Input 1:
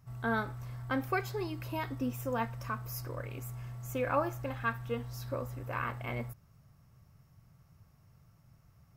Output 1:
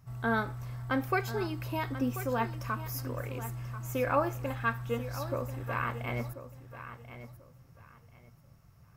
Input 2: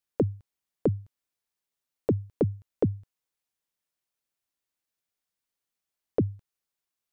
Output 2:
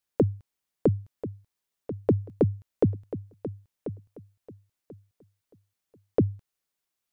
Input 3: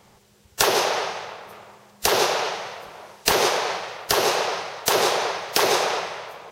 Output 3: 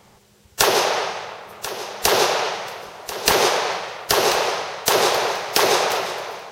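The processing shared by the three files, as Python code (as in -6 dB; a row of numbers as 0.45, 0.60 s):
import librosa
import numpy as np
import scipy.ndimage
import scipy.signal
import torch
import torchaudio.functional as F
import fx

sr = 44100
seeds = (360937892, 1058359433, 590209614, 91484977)

y = fx.echo_feedback(x, sr, ms=1038, feedback_pct=23, wet_db=-12.5)
y = y * librosa.db_to_amplitude(2.5)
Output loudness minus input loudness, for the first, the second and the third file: +3.0, +1.0, +2.5 LU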